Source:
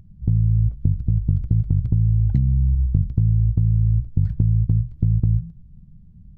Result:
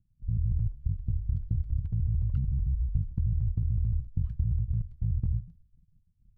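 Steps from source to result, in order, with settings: pitch shift switched off and on -6.5 st, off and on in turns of 74 ms; peaking EQ 380 Hz -6.5 dB 2.9 oct; expander -37 dBFS; trim -8 dB

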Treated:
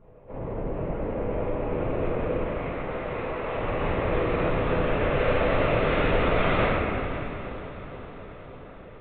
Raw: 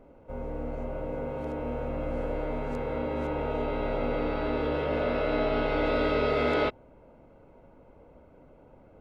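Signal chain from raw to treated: one-sided wavefolder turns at -25.5 dBFS; LPC vocoder at 8 kHz whisper; 2.31–3.57 s: bass shelf 380 Hz -11 dB; echo that smears into a reverb 495 ms, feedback 65%, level -13 dB; reverberation RT60 2.3 s, pre-delay 5 ms, DRR -7.5 dB; dynamic bell 2.3 kHz, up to +4 dB, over -41 dBFS, Q 1.4; trim -4.5 dB

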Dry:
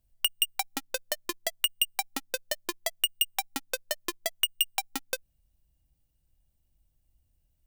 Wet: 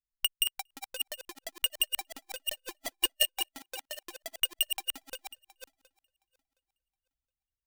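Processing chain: backward echo that repeats 359 ms, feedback 47%, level -2 dB; echo from a far wall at 40 m, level -18 dB; upward expansion 2.5:1, over -40 dBFS

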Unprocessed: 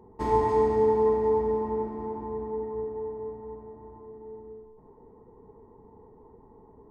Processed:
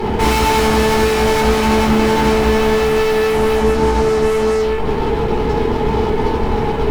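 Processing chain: dynamic bell 450 Hz, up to -7 dB, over -37 dBFS, Q 5.8; fuzz box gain 54 dB, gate -60 dBFS; simulated room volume 300 m³, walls furnished, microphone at 4.1 m; trim -8 dB

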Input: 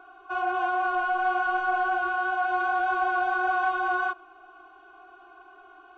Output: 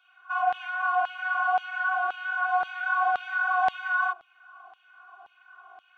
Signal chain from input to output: band-stop 360 Hz, Q 12; LFO high-pass saw down 1.9 Hz 630–3200 Hz; trim -3 dB

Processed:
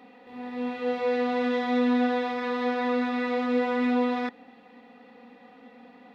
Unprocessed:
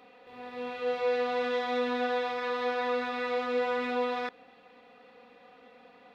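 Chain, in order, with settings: peaking EQ 240 Hz +13 dB 0.73 oct; small resonant body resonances 850/1900 Hz, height 13 dB, ringing for 55 ms

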